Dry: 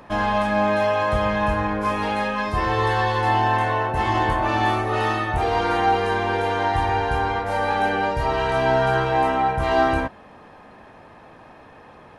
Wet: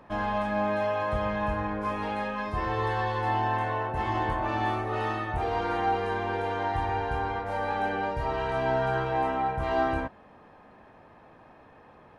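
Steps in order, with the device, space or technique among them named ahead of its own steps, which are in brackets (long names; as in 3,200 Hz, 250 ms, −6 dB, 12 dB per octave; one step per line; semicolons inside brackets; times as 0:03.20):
behind a face mask (high-shelf EQ 3,400 Hz −8 dB)
level −7 dB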